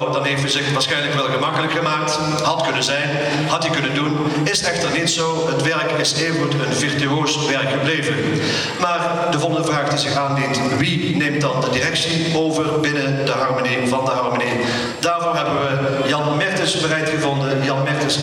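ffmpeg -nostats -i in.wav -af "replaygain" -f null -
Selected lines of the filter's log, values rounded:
track_gain = +0.3 dB
track_peak = 0.349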